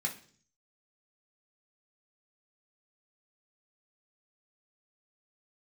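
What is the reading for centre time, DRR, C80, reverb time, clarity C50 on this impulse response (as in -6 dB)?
14 ms, -2.0 dB, 16.5 dB, 0.50 s, 12.0 dB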